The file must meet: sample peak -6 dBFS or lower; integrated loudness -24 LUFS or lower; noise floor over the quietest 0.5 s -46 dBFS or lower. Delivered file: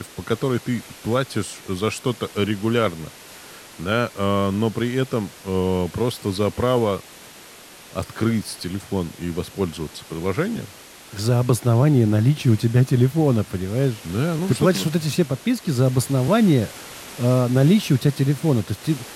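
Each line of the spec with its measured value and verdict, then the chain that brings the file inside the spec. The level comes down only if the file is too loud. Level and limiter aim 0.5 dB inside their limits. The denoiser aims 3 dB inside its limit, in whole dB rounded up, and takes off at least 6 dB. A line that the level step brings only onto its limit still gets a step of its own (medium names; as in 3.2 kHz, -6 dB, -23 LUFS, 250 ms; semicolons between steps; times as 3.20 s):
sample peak -5.0 dBFS: fail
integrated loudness -21.5 LUFS: fail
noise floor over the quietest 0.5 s -44 dBFS: fail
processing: trim -3 dB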